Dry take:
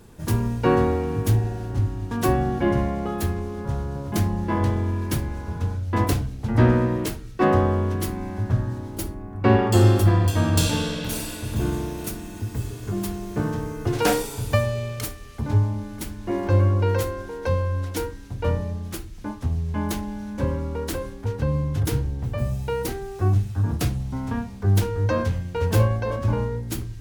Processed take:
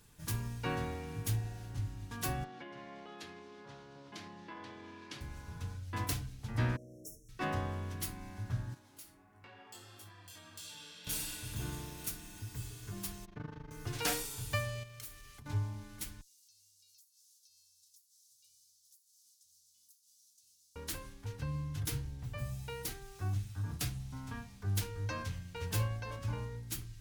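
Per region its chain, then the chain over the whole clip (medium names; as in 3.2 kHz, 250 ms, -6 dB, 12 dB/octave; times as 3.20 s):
2.44–5.21 s: Chebyshev band-pass 300–4100 Hz + compression 4:1, threshold -27 dBFS
6.76–7.29 s: tone controls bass -11 dB, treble -2 dB + compression 4:1, threshold -31 dBFS + brick-wall FIR band-stop 700–5300 Hz
8.74–11.07 s: high-pass 480 Hz 6 dB/octave + compression 3:1, threshold -38 dBFS + chorus 1.5 Hz, delay 19 ms, depth 3.8 ms
13.25–13.71 s: AM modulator 25 Hz, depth 85% + distance through air 250 m
14.83–15.46 s: treble shelf 12 kHz +4.5 dB + compression 5:1, threshold -35 dBFS
16.21–20.76 s: inverse Chebyshev high-pass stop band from 2 kHz, stop band 50 dB + compression 10:1, threshold -55 dBFS
whole clip: amplifier tone stack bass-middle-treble 5-5-5; comb 6.8 ms, depth 31%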